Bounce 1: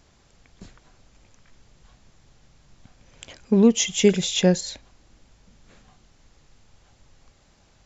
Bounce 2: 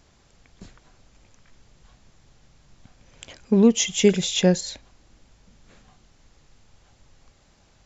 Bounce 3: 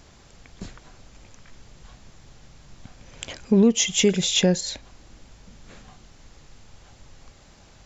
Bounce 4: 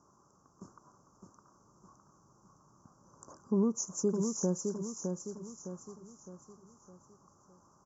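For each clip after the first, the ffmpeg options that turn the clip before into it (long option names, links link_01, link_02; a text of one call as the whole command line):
ffmpeg -i in.wav -af anull out.wav
ffmpeg -i in.wav -af "alimiter=limit=-15.5dB:level=0:latency=1:release=472,acontrast=83" out.wav
ffmpeg -i in.wav -filter_complex "[0:a]asuperstop=centerf=2800:order=12:qfactor=0.62,highpass=190,equalizer=frequency=250:width_type=q:width=4:gain=-4,equalizer=frequency=490:width_type=q:width=4:gain=-7,equalizer=frequency=710:width_type=q:width=4:gain=-9,equalizer=frequency=1100:width_type=q:width=4:gain=7,equalizer=frequency=2400:width_type=q:width=4:gain=7,equalizer=frequency=3600:width_type=q:width=4:gain=-6,lowpass=frequency=6100:width=0.5412,lowpass=frequency=6100:width=1.3066,asplit=2[link_01][link_02];[link_02]aecho=0:1:611|1222|1833|2444|3055:0.562|0.247|0.109|0.0479|0.0211[link_03];[link_01][link_03]amix=inputs=2:normalize=0,volume=-8dB" out.wav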